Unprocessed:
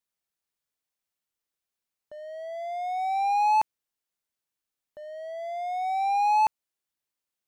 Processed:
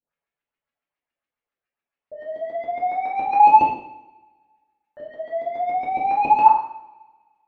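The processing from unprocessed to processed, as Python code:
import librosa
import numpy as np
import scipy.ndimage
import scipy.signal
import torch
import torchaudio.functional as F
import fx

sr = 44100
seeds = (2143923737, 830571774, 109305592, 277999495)

y = fx.filter_lfo_lowpass(x, sr, shape='saw_up', hz=7.2, low_hz=290.0, high_hz=2900.0, q=2.6)
y = fx.dereverb_blind(y, sr, rt60_s=1.2)
y = fx.rev_double_slope(y, sr, seeds[0], early_s=0.67, late_s=1.7, knee_db=-22, drr_db=-7.0)
y = F.gain(torch.from_numpy(y), -2.5).numpy()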